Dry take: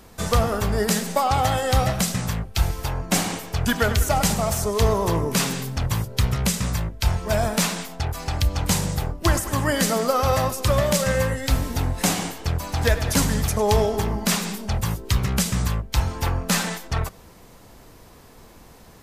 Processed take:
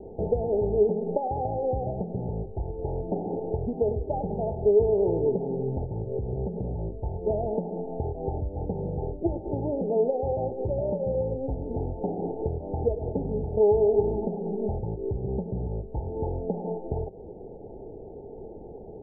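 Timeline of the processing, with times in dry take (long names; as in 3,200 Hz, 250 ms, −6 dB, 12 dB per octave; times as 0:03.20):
0:05.84–0:06.95: downward compressor 3 to 1, threshold −24 dBFS
whole clip: downward compressor 6 to 1, threshold −30 dBFS; Chebyshev low-pass filter 890 Hz, order 10; parametric band 410 Hz +14.5 dB 0.69 octaves; level +2 dB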